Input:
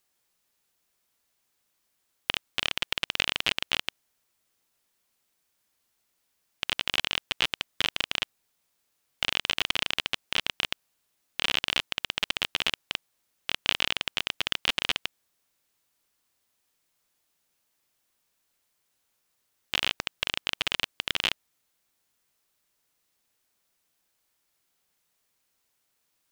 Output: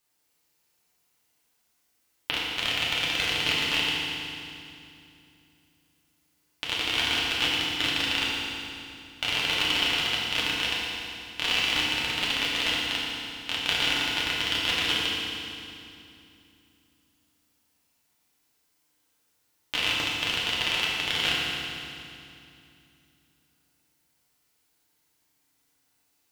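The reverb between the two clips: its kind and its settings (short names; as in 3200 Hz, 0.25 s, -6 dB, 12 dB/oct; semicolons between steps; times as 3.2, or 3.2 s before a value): FDN reverb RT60 2.6 s, low-frequency decay 1.45×, high-frequency decay 0.95×, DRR -6.5 dB; gain -3.5 dB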